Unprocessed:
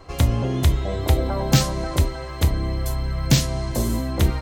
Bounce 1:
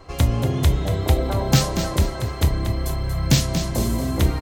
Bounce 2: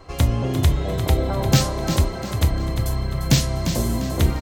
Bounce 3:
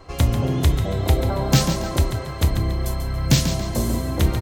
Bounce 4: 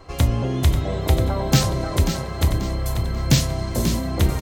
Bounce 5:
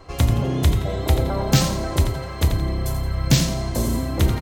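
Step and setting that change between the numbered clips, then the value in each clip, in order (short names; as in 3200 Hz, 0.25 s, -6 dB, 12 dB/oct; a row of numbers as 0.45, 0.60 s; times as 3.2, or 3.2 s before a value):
frequency-shifting echo, time: 234, 349, 140, 538, 85 ms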